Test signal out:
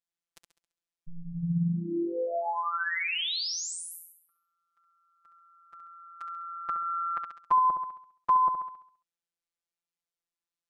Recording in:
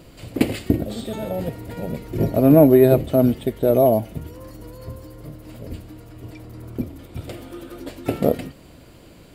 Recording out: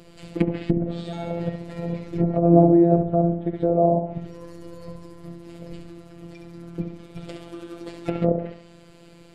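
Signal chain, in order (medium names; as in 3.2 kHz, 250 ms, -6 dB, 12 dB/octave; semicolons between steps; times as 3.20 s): low-pass 9.1 kHz 12 dB/octave; flutter echo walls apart 11.6 m, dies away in 0.57 s; low-pass that closes with the level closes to 800 Hz, closed at -14.5 dBFS; robot voice 170 Hz; dynamic bell 120 Hz, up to +3 dB, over -34 dBFS, Q 0.83; trim -1 dB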